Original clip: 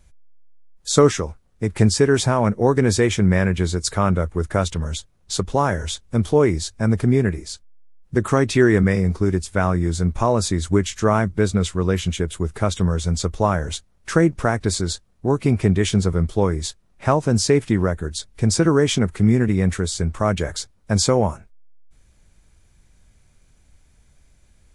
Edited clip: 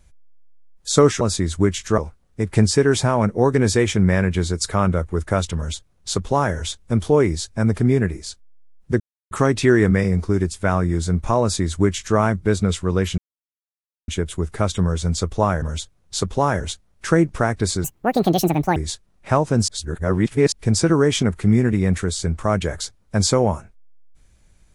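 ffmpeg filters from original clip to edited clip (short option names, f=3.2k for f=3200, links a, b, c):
-filter_complex "[0:a]asplit=11[a][b][c][d][e][f][g][h][i][j][k];[a]atrim=end=1.212[l];[b]atrim=start=10.328:end=11.102[m];[c]atrim=start=1.208:end=8.23,asetpts=PTS-STARTPTS,afade=t=out:st=7.018:d=0.004:c=hsin,apad=pad_dur=0.31[n];[d]atrim=start=8.23:end=12.1,asetpts=PTS-STARTPTS,afade=t=in:d=0.004:c=hsin,afade=t=out:st=3.866:d=0.004:c=hsin,apad=pad_dur=0.9[o];[e]atrim=start=12.1:end=13.642,asetpts=PTS-STARTPTS,afade=t=in:d=0.004:c=hsin[p];[f]atrim=start=4.788:end=5.772[q];[g]atrim=start=13.638:end=14.884[r];[h]atrim=start=14.88:end=16.52,asetpts=PTS-STARTPTS,asetrate=78498,aresample=44100,atrim=end_sample=40631,asetpts=PTS-STARTPTS[s];[i]atrim=start=16.516:end=17.442[t];[j]atrim=start=17.438:end=18.282,asetpts=PTS-STARTPTS,areverse[u];[k]atrim=start=18.278[v];[l][m]acrossfade=d=0.004:c1=hsin:c2=hsin[w];[n][o][p]concat=n=3:v=0:a=1[x];[w][x]acrossfade=d=0.004:c1=hsin:c2=hsin[y];[y][q]acrossfade=d=0.004:c1=hsin:c2=hsin[z];[z][r]acrossfade=d=0.004:c1=hsin:c2=hsin[aa];[aa][s]acrossfade=d=0.004:c1=hsin:c2=hsin[ab];[ab][t]acrossfade=d=0.004:c1=hsin:c2=hsin[ac];[ac][u]acrossfade=d=0.004:c1=hsin:c2=hsin[ad];[ad][v]acrossfade=d=0.004:c1=hsin:c2=hsin"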